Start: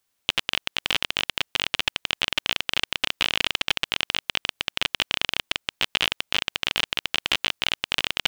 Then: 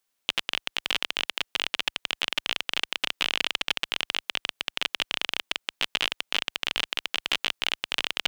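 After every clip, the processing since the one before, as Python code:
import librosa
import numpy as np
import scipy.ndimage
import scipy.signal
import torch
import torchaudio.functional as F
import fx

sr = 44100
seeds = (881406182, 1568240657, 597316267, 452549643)

y = fx.peak_eq(x, sr, hz=65.0, db=-15.0, octaves=1.4)
y = y * 10.0 ** (-3.0 / 20.0)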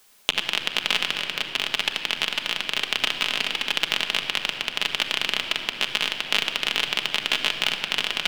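y = fx.tremolo_random(x, sr, seeds[0], hz=3.5, depth_pct=55)
y = fx.room_shoebox(y, sr, seeds[1], volume_m3=3200.0, walls='mixed', distance_m=1.4)
y = fx.band_squash(y, sr, depth_pct=70)
y = y * 10.0 ** (5.0 / 20.0)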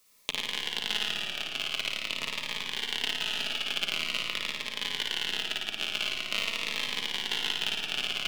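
y = fx.room_flutter(x, sr, wall_m=9.5, rt60_s=1.1)
y = fx.notch_cascade(y, sr, direction='falling', hz=0.46)
y = y * 10.0 ** (-8.0 / 20.0)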